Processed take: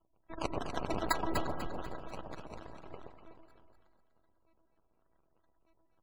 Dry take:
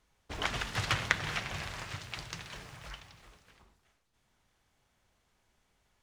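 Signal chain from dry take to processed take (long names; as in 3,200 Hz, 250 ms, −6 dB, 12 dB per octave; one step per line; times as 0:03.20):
phases set to zero 327 Hz
0:01.06–0:01.82: comb filter 5.5 ms, depth 84%
sample-and-hold swept by an LFO 21×, swing 60% 2.5 Hz
gate on every frequency bin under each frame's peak −25 dB strong
delay that swaps between a low-pass and a high-pass 123 ms, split 960 Hz, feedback 59%, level −2 dB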